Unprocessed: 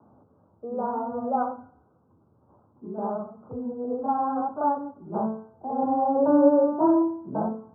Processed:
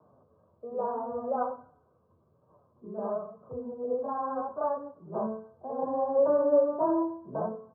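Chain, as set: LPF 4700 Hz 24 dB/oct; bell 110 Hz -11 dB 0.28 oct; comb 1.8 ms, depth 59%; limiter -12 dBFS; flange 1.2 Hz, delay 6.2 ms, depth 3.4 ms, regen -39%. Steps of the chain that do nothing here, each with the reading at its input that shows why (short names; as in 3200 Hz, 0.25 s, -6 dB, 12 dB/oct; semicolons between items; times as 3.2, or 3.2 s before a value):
LPF 4700 Hz: input band ends at 1400 Hz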